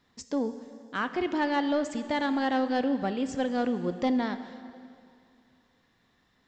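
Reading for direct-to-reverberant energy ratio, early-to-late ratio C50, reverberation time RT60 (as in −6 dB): 10.0 dB, 11.0 dB, 2.4 s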